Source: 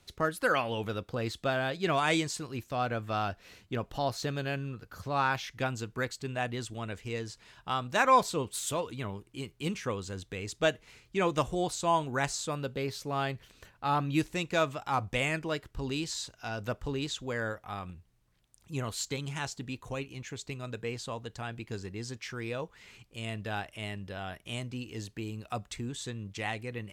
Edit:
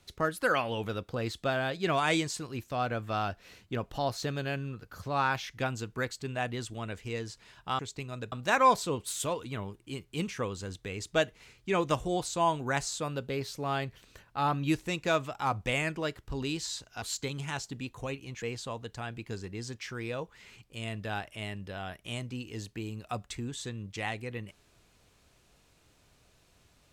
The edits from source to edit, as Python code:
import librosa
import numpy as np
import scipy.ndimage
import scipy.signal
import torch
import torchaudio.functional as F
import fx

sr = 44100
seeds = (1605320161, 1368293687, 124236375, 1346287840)

y = fx.edit(x, sr, fx.cut(start_s=16.49, length_s=2.41),
    fx.move(start_s=20.3, length_s=0.53, to_s=7.79), tone=tone)